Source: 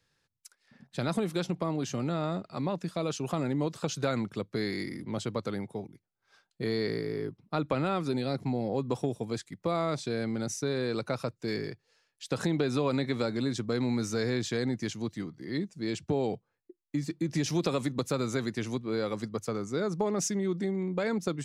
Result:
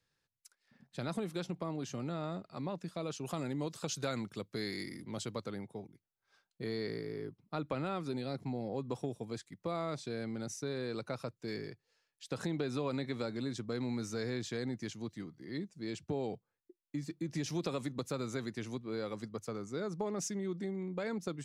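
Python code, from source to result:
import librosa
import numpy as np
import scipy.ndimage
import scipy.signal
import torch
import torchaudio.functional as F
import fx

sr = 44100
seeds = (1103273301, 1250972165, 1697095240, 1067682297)

y = fx.high_shelf(x, sr, hz=3500.0, db=8.5, at=(3.25, 5.44))
y = F.gain(torch.from_numpy(y), -7.5).numpy()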